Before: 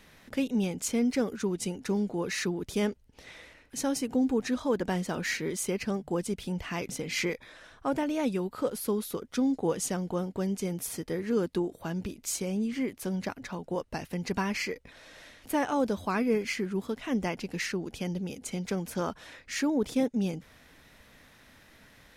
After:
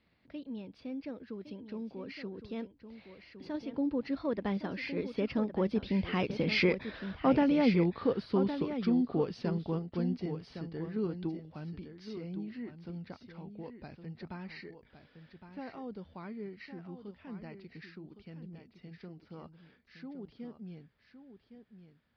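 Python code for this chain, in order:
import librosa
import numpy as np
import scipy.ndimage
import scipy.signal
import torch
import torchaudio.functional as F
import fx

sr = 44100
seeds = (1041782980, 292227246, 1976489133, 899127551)

p1 = fx.doppler_pass(x, sr, speed_mps=31, closest_m=26.0, pass_at_s=6.95)
p2 = scipy.signal.sosfilt(scipy.signal.butter(2, 45.0, 'highpass', fs=sr, output='sos'), p1)
p3 = fx.low_shelf(p2, sr, hz=410.0, db=7.0)
p4 = fx.level_steps(p3, sr, step_db=18)
p5 = p3 + (p4 * 10.0 ** (-3.0 / 20.0))
p6 = scipy.signal.sosfilt(scipy.signal.ellip(4, 1.0, 40, 4800.0, 'lowpass', fs=sr, output='sos'), p5)
y = p6 + fx.echo_single(p6, sr, ms=1112, db=-10.0, dry=0)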